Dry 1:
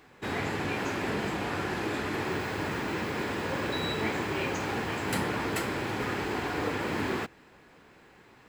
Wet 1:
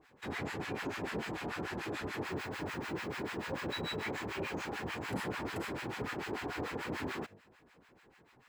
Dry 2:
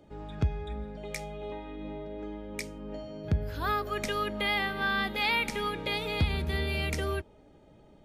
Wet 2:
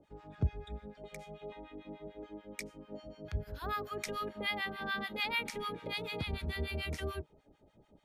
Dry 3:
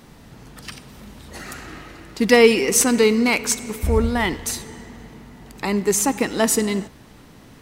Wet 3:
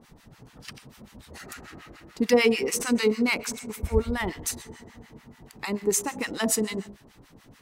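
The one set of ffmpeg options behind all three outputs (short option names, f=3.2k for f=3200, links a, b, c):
-filter_complex "[0:a]bandreject=f=51:t=h:w=4,bandreject=f=102:t=h:w=4,bandreject=f=153:t=h:w=4,bandreject=f=204:t=h:w=4,bandreject=f=255:t=h:w=4,bandreject=f=306:t=h:w=4,bandreject=f=357:t=h:w=4,bandreject=f=408:t=h:w=4,bandreject=f=459:t=h:w=4,bandreject=f=510:t=h:w=4,bandreject=f=561:t=h:w=4,bandreject=f=612:t=h:w=4,bandreject=f=663:t=h:w=4,bandreject=f=714:t=h:w=4,acrossover=split=930[a][b];[a]aeval=exprs='val(0)*(1-1/2+1/2*cos(2*PI*6.8*n/s))':c=same[c];[b]aeval=exprs='val(0)*(1-1/2-1/2*cos(2*PI*6.8*n/s))':c=same[d];[c][d]amix=inputs=2:normalize=0,volume=-2.5dB"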